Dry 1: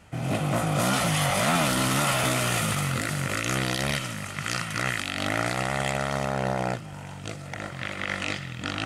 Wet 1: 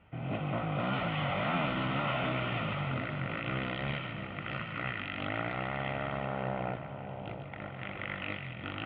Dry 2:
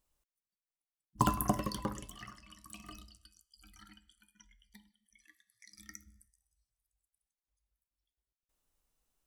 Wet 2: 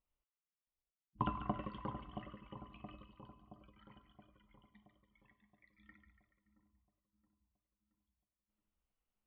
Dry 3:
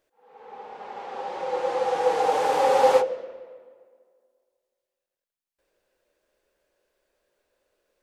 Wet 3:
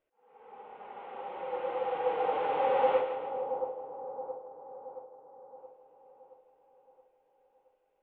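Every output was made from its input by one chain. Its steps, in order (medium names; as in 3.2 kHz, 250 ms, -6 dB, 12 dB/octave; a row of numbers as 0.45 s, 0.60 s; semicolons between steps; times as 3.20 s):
steep low-pass 3.2 kHz 48 dB/octave; band-stop 1.7 kHz, Q 9.9; two-band feedback delay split 1 kHz, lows 673 ms, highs 143 ms, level -8 dB; trim -8 dB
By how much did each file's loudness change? -8.5 LU, -9.0 LU, -9.5 LU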